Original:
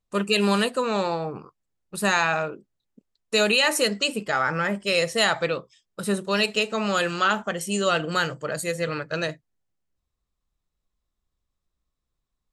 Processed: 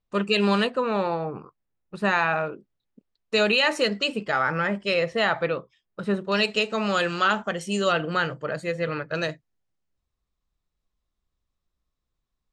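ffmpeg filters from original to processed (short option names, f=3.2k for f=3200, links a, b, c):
-af "asetnsamples=n=441:p=0,asendcmd='0.67 lowpass f 2600;2.46 lowpass f 4200;4.94 lowpass f 2500;6.32 lowpass f 5700;7.92 lowpass f 3100;9.15 lowpass f 6600',lowpass=4.5k"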